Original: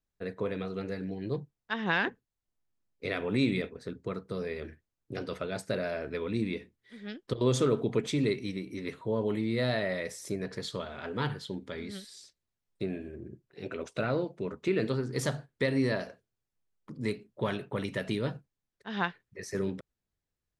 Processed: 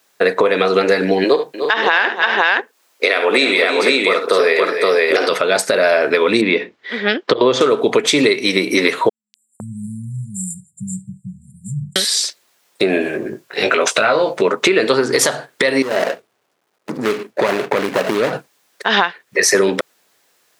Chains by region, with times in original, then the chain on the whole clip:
1.24–5.29 s: high-pass 340 Hz + multi-tap echo 51/71/297/338/520 ms -12.5/-12.5/-14.5/-17/-4 dB
6.41–7.61 s: high-pass 88 Hz + distance through air 200 m
9.09–11.96 s: brick-wall FIR band-stop 200–7100 Hz + distance through air 110 m + three bands offset in time mids, highs, lows 250/510 ms, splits 1.2/3.6 kHz
13.04–14.42 s: peaking EQ 340 Hz -6.5 dB 0.96 oct + doubling 19 ms -4.5 dB + compression 2:1, threshold -39 dBFS
15.82–18.33 s: median filter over 41 samples + dynamic bell 1.7 kHz, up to +4 dB, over -51 dBFS, Q 0.75 + compression 4:1, threshold -40 dBFS
whole clip: high-pass 510 Hz 12 dB/octave; compression 12:1, threshold -43 dBFS; loudness maximiser +34.5 dB; trim -1 dB

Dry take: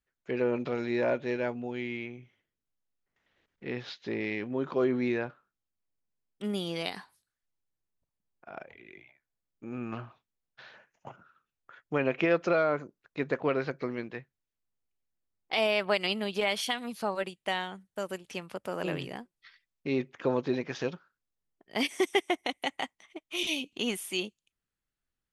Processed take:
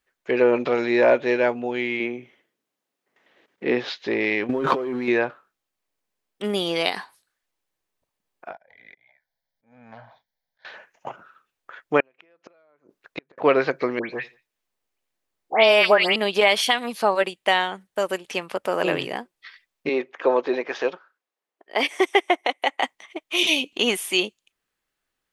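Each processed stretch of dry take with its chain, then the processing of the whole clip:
2.00–3.89 s: high-pass 210 Hz + bass shelf 440 Hz +10 dB
4.49–5.08 s: comb 7.4 ms, depth 45% + waveshaping leveller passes 1 + compressor with a negative ratio -33 dBFS
8.52–10.65 s: static phaser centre 1.8 kHz, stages 8 + compression 2:1, threshold -53 dBFS + slow attack 371 ms
12.00–13.38 s: compression 4:1, threshold -29 dBFS + inverted gate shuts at -27 dBFS, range -38 dB
13.99–16.16 s: phase dispersion highs, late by 132 ms, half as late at 2.6 kHz + feedback delay 87 ms, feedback 31%, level -22.5 dB
19.89–22.83 s: high-pass 380 Hz + treble shelf 3.1 kHz -9.5 dB
whole clip: tone controls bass -13 dB, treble -4 dB; band-stop 1.4 kHz, Q 22; loudness maximiser +16 dB; trim -3.5 dB

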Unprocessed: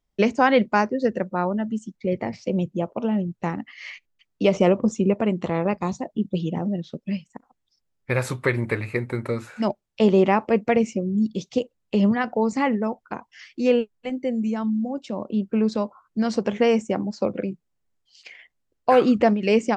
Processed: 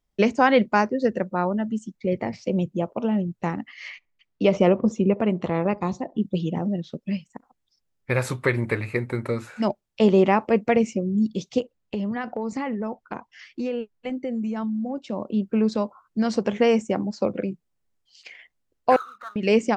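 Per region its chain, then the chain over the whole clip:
3.88–6.17 s: distance through air 80 m + feedback echo behind a band-pass 67 ms, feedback 30%, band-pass 530 Hz, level -21 dB
11.60–15.10 s: compression, threshold -24 dBFS + treble shelf 6.9 kHz -8.5 dB
18.96–19.36 s: Butterworth band-pass 1.3 kHz, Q 4.4 + power-law waveshaper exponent 0.7
whole clip: none

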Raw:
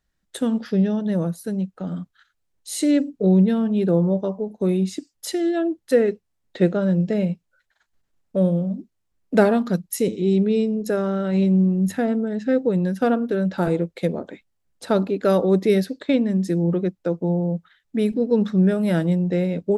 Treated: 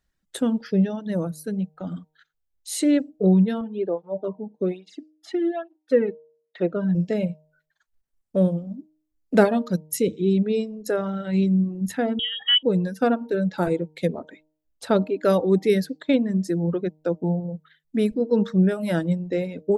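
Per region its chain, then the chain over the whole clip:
3.61–6.95 s: Bessel low-pass 2.5 kHz + cancelling through-zero flanger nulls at 1.2 Hz, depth 2.1 ms
12.19–12.63 s: tilt shelf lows -3.5 dB, about 650 Hz + comb 1.8 ms, depth 66% + frequency inversion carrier 3.5 kHz
whole clip: reverb removal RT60 1.7 s; de-hum 154.5 Hz, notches 6

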